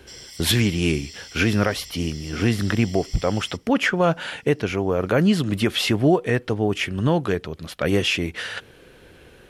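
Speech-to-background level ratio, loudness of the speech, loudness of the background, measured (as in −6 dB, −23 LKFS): 16.5 dB, −22.5 LKFS, −39.0 LKFS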